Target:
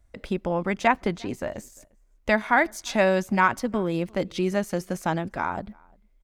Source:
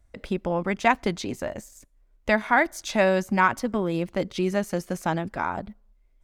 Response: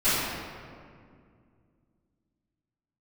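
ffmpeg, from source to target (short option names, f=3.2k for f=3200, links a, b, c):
-filter_complex "[0:a]asplit=2[a][b];[b]adelay=349.9,volume=-28dB,highshelf=f=4k:g=-7.87[c];[a][c]amix=inputs=2:normalize=0,asettb=1/sr,asplit=3[d][e][f];[d]atrim=end=0.874[g];[e]atrim=start=0.87:end=1.56,asetpts=PTS-STARTPTS,afade=t=in:d=0.004:c=qsin,afade=t=out:st=0.686:d=0.004:c=qsin,acrossover=split=2800[h][i];[i]acompressor=threshold=-44dB:ratio=4:attack=1:release=60[j];[h][j]amix=inputs=2:normalize=0[k];[f]atrim=start=1.556[l];[g][k]acrossfade=d=0.004:c1=hsin:c2=qsin[m];[m][l]acrossfade=d=0.004:c1=qsin:c2=hsin"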